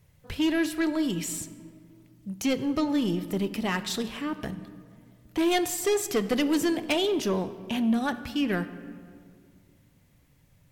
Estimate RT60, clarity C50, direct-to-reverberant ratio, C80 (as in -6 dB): 2.2 s, 13.0 dB, 11.5 dB, 14.5 dB